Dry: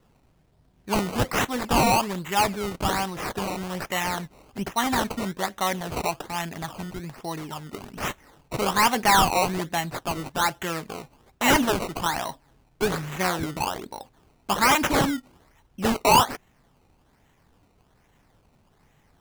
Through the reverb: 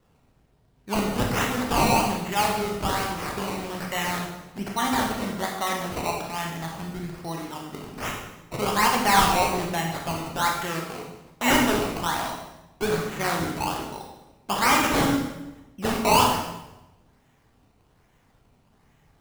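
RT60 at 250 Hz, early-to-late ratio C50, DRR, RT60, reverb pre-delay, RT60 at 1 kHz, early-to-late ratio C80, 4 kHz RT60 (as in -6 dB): 1.2 s, 3.5 dB, 0.0 dB, 1.0 s, 24 ms, 0.90 s, 6.0 dB, 0.85 s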